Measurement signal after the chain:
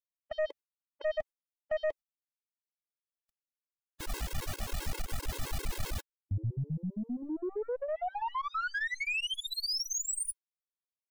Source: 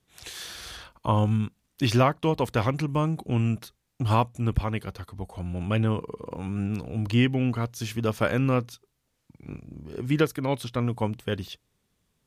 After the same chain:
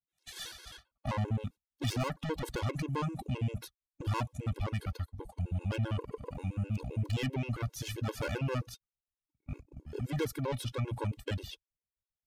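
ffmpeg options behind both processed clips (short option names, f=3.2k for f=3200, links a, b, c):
-af "agate=range=-29dB:threshold=-39dB:ratio=16:detection=peak,asubboost=boost=4:cutoff=85,aeval=exprs='(tanh(25.1*val(0)+0.2)-tanh(0.2))/25.1':c=same,afftfilt=real='re*gt(sin(2*PI*7.6*pts/sr)*(1-2*mod(floor(b*sr/1024/280),2)),0)':imag='im*gt(sin(2*PI*7.6*pts/sr)*(1-2*mod(floor(b*sr/1024/280),2)),0)':win_size=1024:overlap=0.75,volume=1dB"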